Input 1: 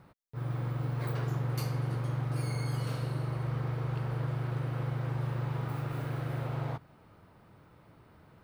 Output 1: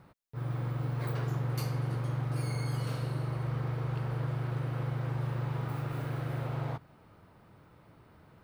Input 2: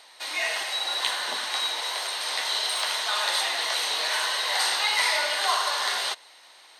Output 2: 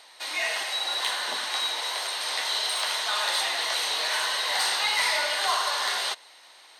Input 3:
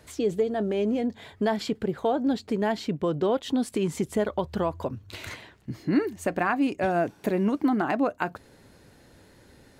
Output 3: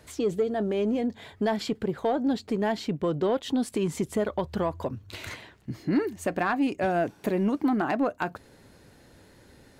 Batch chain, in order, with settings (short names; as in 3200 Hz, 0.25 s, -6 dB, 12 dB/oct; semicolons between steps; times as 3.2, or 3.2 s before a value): soft clip -15 dBFS